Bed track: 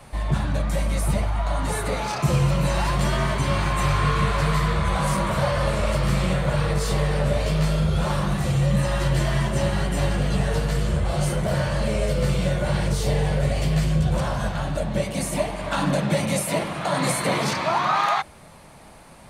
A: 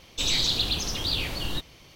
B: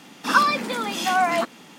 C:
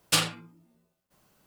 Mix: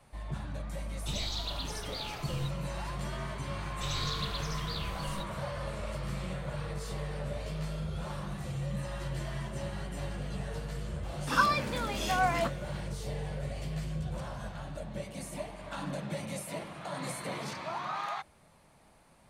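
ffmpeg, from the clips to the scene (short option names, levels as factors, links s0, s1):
-filter_complex "[1:a]asplit=2[s0][s1];[0:a]volume=0.178[s2];[2:a]asplit=2[s3][s4];[s4]adelay=24,volume=0.251[s5];[s3][s5]amix=inputs=2:normalize=0[s6];[s0]atrim=end=1.95,asetpts=PTS-STARTPTS,volume=0.224,afade=t=in:d=0.004:c=hsin,afade=t=out:st=1.946:d=0.004:c=hsin,adelay=880[s7];[s1]atrim=end=1.95,asetpts=PTS-STARTPTS,volume=0.224,afade=t=in:d=0.004:c=hsin,afade=t=out:st=1.946:d=0.004:c=hsin,adelay=3630[s8];[s6]atrim=end=1.78,asetpts=PTS-STARTPTS,volume=0.376,afade=t=in:d=0.004:c=hsin,afade=t=out:st=1.776:d=0.004:c=hsin,adelay=11030[s9];[s2][s7][s8][s9]amix=inputs=4:normalize=0"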